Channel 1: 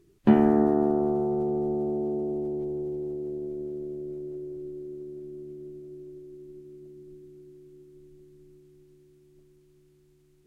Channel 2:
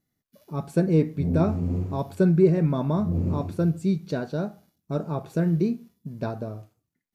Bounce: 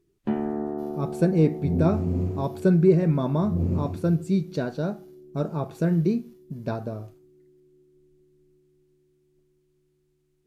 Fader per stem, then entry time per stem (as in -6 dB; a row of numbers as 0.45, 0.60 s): -8.0, +0.5 dB; 0.00, 0.45 s